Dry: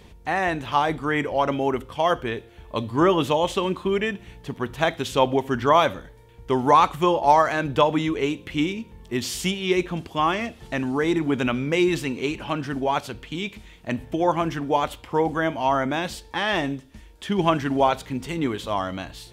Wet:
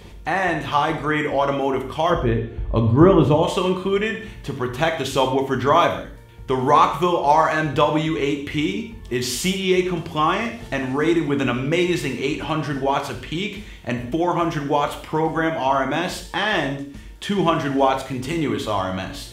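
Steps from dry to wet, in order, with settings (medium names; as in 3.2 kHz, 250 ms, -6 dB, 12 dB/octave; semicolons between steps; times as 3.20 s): 2.10–3.43 s: tilt EQ -3.5 dB/octave; in parallel at +1.5 dB: compression, threshold -30 dBFS, peak gain reduction 19.5 dB; on the sum: gated-style reverb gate 210 ms falling, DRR 4 dB; trim -1.5 dB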